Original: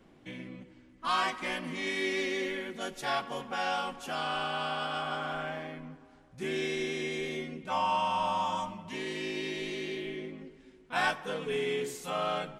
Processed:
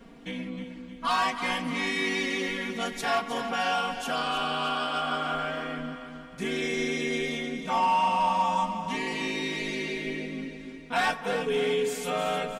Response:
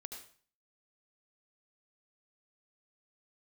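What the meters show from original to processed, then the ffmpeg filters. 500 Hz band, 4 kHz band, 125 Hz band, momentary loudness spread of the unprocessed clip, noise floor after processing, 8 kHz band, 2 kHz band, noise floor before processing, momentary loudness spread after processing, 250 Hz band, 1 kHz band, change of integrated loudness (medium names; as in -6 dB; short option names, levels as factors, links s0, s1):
+4.0 dB, +4.5 dB, +4.0 dB, 12 LU, -44 dBFS, +6.0 dB, +4.5 dB, -58 dBFS, 12 LU, +6.0 dB, +5.5 dB, +4.5 dB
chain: -filter_complex "[0:a]aecho=1:1:4.3:0.88,asplit=2[s0][s1];[s1]acompressor=threshold=0.01:ratio=12,volume=1.12[s2];[s0][s2]amix=inputs=2:normalize=0,asoftclip=type=hard:threshold=0.112,aecho=1:1:311|622|933|1244|1555:0.316|0.149|0.0699|0.0328|0.0154"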